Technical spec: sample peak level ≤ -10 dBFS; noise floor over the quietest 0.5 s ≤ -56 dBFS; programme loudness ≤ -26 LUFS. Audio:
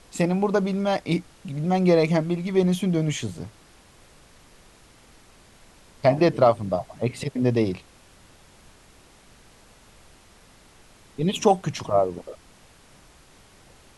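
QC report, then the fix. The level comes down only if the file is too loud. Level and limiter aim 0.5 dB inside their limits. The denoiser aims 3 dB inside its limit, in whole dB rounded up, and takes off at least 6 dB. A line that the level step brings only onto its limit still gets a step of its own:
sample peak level -5.0 dBFS: fail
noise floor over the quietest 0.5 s -53 dBFS: fail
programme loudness -23.5 LUFS: fail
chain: noise reduction 6 dB, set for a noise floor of -53 dBFS; trim -3 dB; peak limiter -10.5 dBFS

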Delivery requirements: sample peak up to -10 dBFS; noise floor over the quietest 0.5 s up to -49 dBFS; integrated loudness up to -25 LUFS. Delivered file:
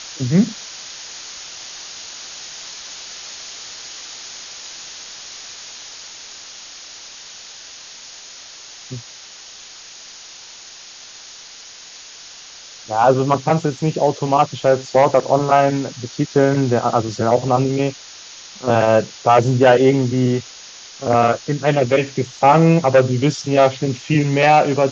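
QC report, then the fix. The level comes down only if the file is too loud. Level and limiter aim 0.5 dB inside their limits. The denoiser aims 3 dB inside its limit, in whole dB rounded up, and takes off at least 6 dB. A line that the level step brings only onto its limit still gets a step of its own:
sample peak -2.0 dBFS: fail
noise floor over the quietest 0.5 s -39 dBFS: fail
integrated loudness -16.5 LUFS: fail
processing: noise reduction 6 dB, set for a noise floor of -39 dBFS; trim -9 dB

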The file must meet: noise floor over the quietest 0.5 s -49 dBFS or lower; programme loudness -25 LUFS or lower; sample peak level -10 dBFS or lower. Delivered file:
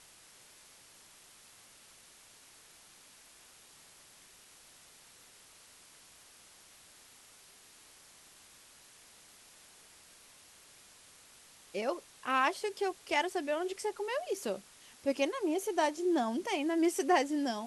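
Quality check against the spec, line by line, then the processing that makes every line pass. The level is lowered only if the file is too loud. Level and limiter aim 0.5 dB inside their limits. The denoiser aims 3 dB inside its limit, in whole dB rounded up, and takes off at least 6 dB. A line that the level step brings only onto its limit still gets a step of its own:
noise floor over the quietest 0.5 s -59 dBFS: pass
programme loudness -33.0 LUFS: pass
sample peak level -16.0 dBFS: pass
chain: none needed

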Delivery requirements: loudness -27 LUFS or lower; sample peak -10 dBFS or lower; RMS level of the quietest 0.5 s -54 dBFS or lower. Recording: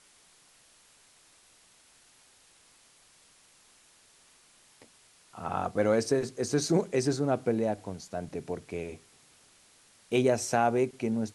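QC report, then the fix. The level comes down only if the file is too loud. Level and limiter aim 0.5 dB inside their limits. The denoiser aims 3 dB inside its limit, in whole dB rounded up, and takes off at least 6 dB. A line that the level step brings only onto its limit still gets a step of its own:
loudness -29.5 LUFS: pass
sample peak -12.0 dBFS: pass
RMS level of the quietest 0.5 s -61 dBFS: pass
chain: none needed

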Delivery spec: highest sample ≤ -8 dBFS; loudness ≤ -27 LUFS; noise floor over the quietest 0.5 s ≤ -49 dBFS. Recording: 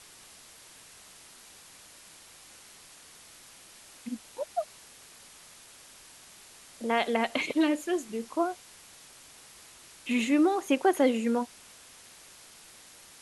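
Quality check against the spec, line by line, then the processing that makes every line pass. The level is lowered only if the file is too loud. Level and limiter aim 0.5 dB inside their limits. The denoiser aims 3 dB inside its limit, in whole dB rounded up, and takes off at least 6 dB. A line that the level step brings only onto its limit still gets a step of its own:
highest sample -12.5 dBFS: pass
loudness -28.5 LUFS: pass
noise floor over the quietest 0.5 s -53 dBFS: pass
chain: none needed

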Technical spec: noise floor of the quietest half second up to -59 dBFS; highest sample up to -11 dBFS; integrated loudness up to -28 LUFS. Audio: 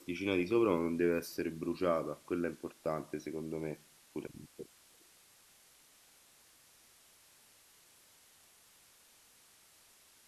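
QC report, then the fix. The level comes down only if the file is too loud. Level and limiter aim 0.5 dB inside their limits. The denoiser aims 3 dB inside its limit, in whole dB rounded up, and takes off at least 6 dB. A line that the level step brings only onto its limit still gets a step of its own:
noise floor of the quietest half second -64 dBFS: pass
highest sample -18.0 dBFS: pass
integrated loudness -35.5 LUFS: pass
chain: none needed

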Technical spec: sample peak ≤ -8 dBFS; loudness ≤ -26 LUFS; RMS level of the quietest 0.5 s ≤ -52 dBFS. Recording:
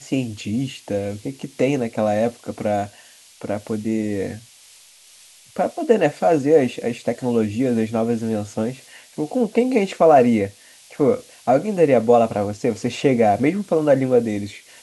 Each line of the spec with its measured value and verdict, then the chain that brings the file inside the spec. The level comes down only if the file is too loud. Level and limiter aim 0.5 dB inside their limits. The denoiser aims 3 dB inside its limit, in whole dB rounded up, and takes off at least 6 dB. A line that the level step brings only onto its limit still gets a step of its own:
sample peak -3.5 dBFS: fail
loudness -20.0 LUFS: fail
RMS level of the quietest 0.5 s -49 dBFS: fail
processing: trim -6.5 dB

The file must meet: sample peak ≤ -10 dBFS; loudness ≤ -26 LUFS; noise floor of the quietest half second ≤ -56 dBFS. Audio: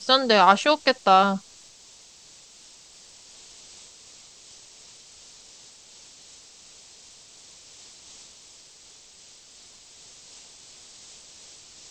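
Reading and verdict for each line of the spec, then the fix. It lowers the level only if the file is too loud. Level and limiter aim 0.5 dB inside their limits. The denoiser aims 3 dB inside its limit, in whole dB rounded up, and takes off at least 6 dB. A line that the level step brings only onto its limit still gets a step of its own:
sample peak -3.0 dBFS: fail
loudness -19.0 LUFS: fail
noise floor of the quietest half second -51 dBFS: fail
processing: trim -7.5 dB

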